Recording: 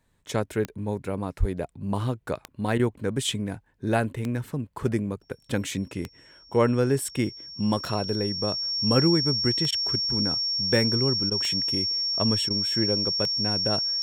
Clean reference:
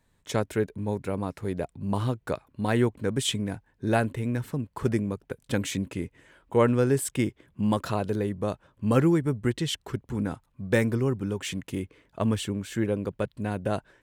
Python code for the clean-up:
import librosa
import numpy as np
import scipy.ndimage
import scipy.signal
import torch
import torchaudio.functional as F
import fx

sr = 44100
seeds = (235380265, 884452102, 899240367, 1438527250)

y = fx.fix_declick_ar(x, sr, threshold=10.0)
y = fx.notch(y, sr, hz=5500.0, q=30.0)
y = fx.highpass(y, sr, hz=140.0, slope=24, at=(1.39, 1.51), fade=0.02)
y = fx.fix_interpolate(y, sr, at_s=(2.78, 9.71, 11.3, 12.49), length_ms=13.0)